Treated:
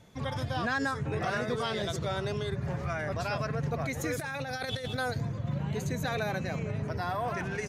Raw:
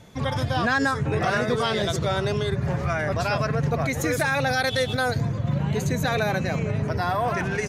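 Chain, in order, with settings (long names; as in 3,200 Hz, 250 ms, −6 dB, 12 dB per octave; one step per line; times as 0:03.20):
0:04.19–0:04.88: compressor whose output falls as the input rises −26 dBFS, ratio −0.5
level −8 dB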